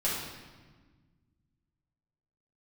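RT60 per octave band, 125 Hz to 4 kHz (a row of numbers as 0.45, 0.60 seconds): 2.6, 2.2, 1.5, 1.4, 1.3, 1.1 seconds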